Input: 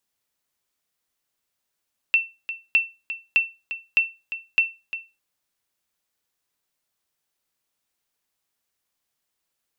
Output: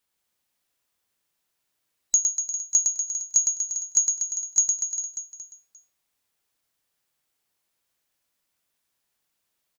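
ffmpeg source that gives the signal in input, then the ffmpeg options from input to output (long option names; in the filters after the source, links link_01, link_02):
-f lavfi -i "aevalsrc='0.316*(sin(2*PI*2690*mod(t,0.61))*exp(-6.91*mod(t,0.61)/0.26)+0.237*sin(2*PI*2690*max(mod(t,0.61)-0.35,0))*exp(-6.91*max(mod(t,0.61)-0.35,0)/0.26))':duration=3.05:sample_rate=44100"
-filter_complex "[0:a]afftfilt=real='real(if(lt(b,736),b+184*(1-2*mod(floor(b/184),2)),b),0)':imag='imag(if(lt(b,736),b+184*(1-2*mod(floor(b/184),2)),b),0)':win_size=2048:overlap=0.75,asplit=2[link_01][link_02];[link_02]aecho=0:1:110|242|400.4|590.5|818.6:0.631|0.398|0.251|0.158|0.1[link_03];[link_01][link_03]amix=inputs=2:normalize=0"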